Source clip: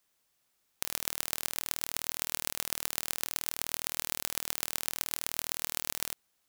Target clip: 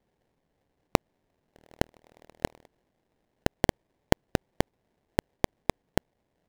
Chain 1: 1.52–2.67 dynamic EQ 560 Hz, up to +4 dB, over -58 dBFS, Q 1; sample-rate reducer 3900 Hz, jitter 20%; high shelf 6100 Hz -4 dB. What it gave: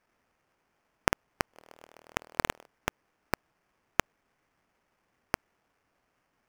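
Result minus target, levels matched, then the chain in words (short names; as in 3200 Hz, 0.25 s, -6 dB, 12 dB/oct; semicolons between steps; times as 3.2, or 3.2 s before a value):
sample-rate reducer: distortion -24 dB
1.52–2.67 dynamic EQ 560 Hz, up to +4 dB, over -58 dBFS, Q 1; sample-rate reducer 1300 Hz, jitter 20%; high shelf 6100 Hz -4 dB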